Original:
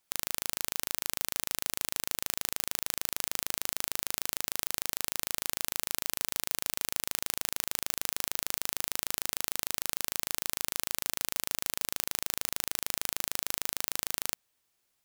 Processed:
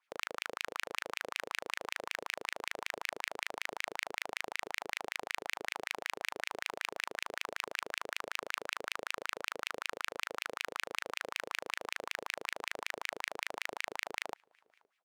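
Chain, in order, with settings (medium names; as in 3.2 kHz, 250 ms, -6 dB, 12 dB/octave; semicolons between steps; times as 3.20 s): transient shaper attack +1 dB, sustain +6 dB; echo from a far wall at 89 m, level -29 dB; wah-wah 5.3 Hz 420–2500 Hz, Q 3.7; trim +9 dB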